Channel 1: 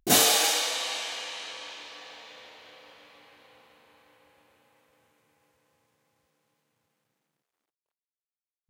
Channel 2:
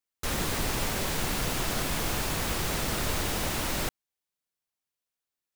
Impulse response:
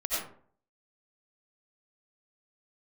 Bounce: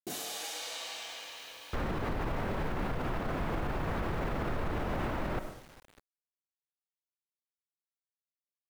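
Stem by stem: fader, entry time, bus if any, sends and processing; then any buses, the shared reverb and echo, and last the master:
-9.5 dB, 0.00 s, send -16.5 dB, no echo send, compressor 16:1, threshold -27 dBFS, peak gain reduction 12.5 dB
+1.5 dB, 1.50 s, send -18 dB, echo send -23.5 dB, LPF 1500 Hz 12 dB/oct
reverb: on, RT60 0.50 s, pre-delay 50 ms
echo: feedback echo 0.205 s, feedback 59%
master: bit-crush 9-bit; limiter -25 dBFS, peak gain reduction 9 dB

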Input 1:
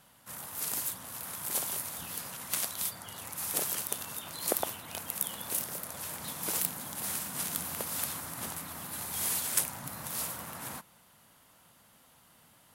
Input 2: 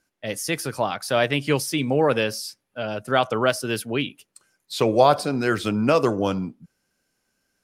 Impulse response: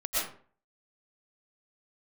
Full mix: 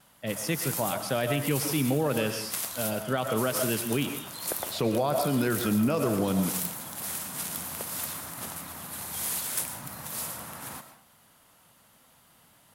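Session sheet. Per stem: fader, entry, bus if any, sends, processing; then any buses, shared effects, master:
0.0 dB, 0.00 s, send -16 dB, vibrato 0.75 Hz 20 cents; soft clip -21.5 dBFS, distortion -14 dB
-6.5 dB, 0.00 s, send -15.5 dB, bell 170 Hz +7.5 dB 1.5 oct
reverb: on, RT60 0.45 s, pre-delay 80 ms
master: limiter -17 dBFS, peak gain reduction 9.5 dB

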